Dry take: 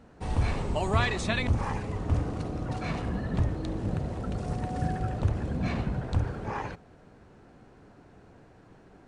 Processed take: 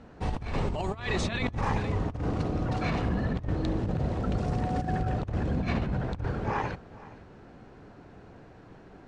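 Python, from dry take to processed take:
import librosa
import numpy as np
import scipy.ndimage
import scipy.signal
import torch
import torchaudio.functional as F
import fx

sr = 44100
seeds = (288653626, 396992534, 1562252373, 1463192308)

y = scipy.signal.sosfilt(scipy.signal.butter(2, 5900.0, 'lowpass', fs=sr, output='sos'), x)
y = y + 10.0 ** (-19.5 / 20.0) * np.pad(y, (int(469 * sr / 1000.0), 0))[:len(y)]
y = fx.over_compress(y, sr, threshold_db=-30.0, ratio=-0.5)
y = y * librosa.db_to_amplitude(2.0)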